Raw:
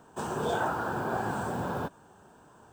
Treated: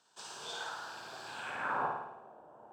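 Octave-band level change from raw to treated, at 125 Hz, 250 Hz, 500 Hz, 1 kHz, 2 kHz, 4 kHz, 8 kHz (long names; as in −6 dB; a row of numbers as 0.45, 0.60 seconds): −21.0, −18.5, −13.0, −6.0, −3.5, +2.0, −3.0 decibels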